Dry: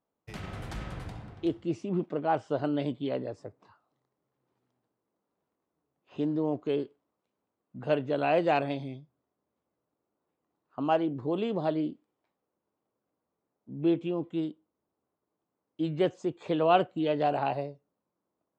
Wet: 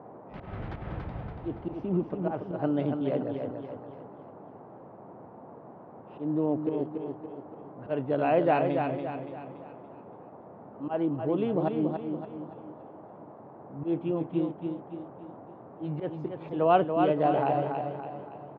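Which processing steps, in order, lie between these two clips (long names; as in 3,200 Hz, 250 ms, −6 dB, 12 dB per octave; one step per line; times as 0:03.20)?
high-shelf EQ 3,800 Hz −8 dB
volume swells 130 ms
high-frequency loss of the air 320 metres
repeating echo 284 ms, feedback 46%, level −5.5 dB
noise in a band 110–870 Hz −50 dBFS
level +2.5 dB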